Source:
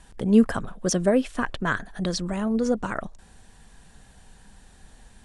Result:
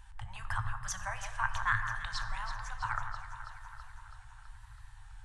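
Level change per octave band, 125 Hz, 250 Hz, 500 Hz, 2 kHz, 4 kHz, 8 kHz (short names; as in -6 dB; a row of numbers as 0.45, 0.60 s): -10.0 dB, under -35 dB, -30.5 dB, -2.5 dB, -8.5 dB, -9.5 dB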